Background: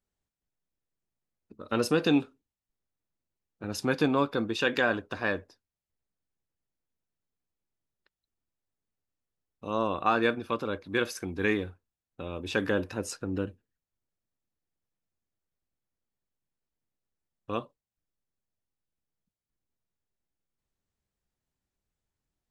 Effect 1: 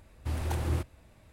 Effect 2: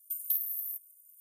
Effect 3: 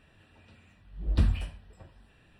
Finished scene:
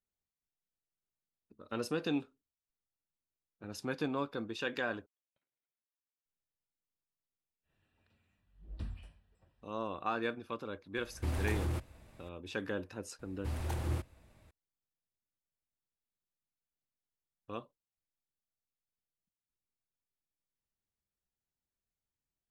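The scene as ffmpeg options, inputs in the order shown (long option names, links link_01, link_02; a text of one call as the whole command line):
ffmpeg -i bed.wav -i cue0.wav -i cue1.wav -i cue2.wav -filter_complex "[1:a]asplit=2[link_01][link_02];[0:a]volume=-10dB[link_03];[2:a]lowpass=frequency=2000:width=0.5412,lowpass=frequency=2000:width=1.3066[link_04];[link_01]alimiter=level_in=2.5dB:limit=-24dB:level=0:latency=1:release=26,volume=-2.5dB[link_05];[link_03]asplit=2[link_06][link_07];[link_06]atrim=end=5.064[link_08];[link_04]atrim=end=1.2,asetpts=PTS-STARTPTS,volume=-15dB[link_09];[link_07]atrim=start=6.256[link_10];[3:a]atrim=end=2.39,asetpts=PTS-STARTPTS,volume=-18dB,afade=type=in:duration=0.1,afade=type=out:start_time=2.29:duration=0.1,adelay=336042S[link_11];[link_05]atrim=end=1.32,asetpts=PTS-STARTPTS,volume=-0.5dB,afade=type=in:duration=0.004:curve=hsin,afade=type=out:start_time=1.316:duration=0.004:curve=hsin,adelay=10970[link_12];[link_02]atrim=end=1.32,asetpts=PTS-STARTPTS,volume=-5dB,afade=type=in:duration=0.004:curve=hsin,afade=type=out:start_time=1.316:duration=0.004:curve=hsin,adelay=13190[link_13];[link_08][link_09]acrossfade=duration=0.004:curve1=hsin:curve2=hsin[link_14];[link_14][link_10]acrossfade=duration=0.004:curve1=hsin:curve2=hsin[link_15];[link_15][link_11][link_12][link_13]amix=inputs=4:normalize=0" out.wav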